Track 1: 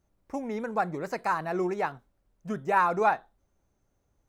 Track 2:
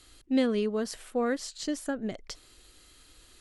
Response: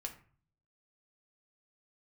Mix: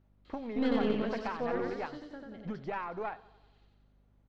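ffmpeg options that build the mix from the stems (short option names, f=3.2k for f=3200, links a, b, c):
-filter_complex "[0:a]acompressor=threshold=-36dB:ratio=8,volume=0.5dB,asplit=3[a][b][c];[b]volume=-20dB[d];[1:a]asoftclip=type=tanh:threshold=-16.5dB,adelay=250,volume=-4dB,afade=t=out:st=1.27:d=0.56:silence=0.281838,asplit=2[e][f];[f]volume=-3dB[g];[c]apad=whole_len=161071[h];[e][h]sidechaincompress=threshold=-36dB:ratio=8:attack=16:release=254[i];[d][g]amix=inputs=2:normalize=0,aecho=0:1:91|182|273|364|455|546|637|728|819:1|0.59|0.348|0.205|0.121|0.0715|0.0422|0.0249|0.0147[j];[a][i][j]amix=inputs=3:normalize=0,lowpass=f=4k:w=0.5412,lowpass=f=4k:w=1.3066,aeval=exprs='val(0)+0.000562*(sin(2*PI*50*n/s)+sin(2*PI*2*50*n/s)/2+sin(2*PI*3*50*n/s)/3+sin(2*PI*4*50*n/s)/4+sin(2*PI*5*50*n/s)/5)':c=same,aeval=exprs='0.126*(cos(1*acos(clip(val(0)/0.126,-1,1)))-cos(1*PI/2))+0.01*(cos(6*acos(clip(val(0)/0.126,-1,1)))-cos(6*PI/2))':c=same"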